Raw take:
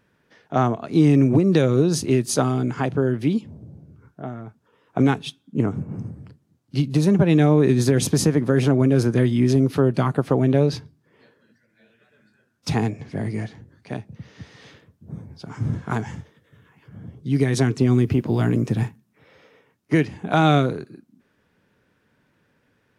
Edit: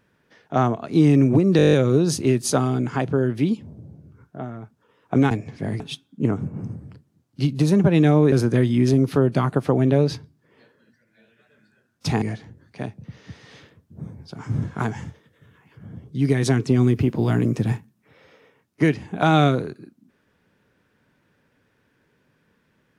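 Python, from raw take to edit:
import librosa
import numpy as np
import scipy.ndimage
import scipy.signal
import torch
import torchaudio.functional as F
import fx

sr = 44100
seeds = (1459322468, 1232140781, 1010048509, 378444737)

y = fx.edit(x, sr, fx.stutter(start_s=1.57, slice_s=0.02, count=9),
    fx.cut(start_s=7.67, length_s=1.27),
    fx.move(start_s=12.84, length_s=0.49, to_s=5.15), tone=tone)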